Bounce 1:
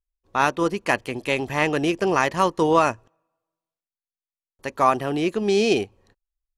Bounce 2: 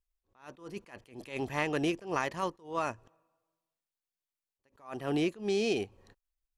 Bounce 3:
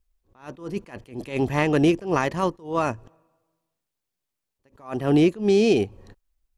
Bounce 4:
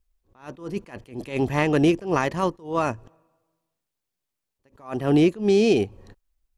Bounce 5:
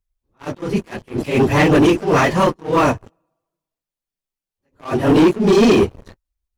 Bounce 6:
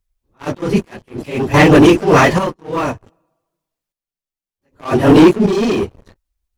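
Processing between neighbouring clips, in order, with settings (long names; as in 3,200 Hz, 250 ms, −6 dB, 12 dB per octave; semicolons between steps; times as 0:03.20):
downward compressor 10 to 1, threshold −26 dBFS, peak gain reduction 14 dB; level that may rise only so fast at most 160 dB per second
low-shelf EQ 490 Hz +9 dB; level +6 dB
no processing that can be heard
random phases in long frames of 50 ms; leveller curve on the samples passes 3
square-wave tremolo 0.65 Hz, depth 65%, duty 55%; level +5 dB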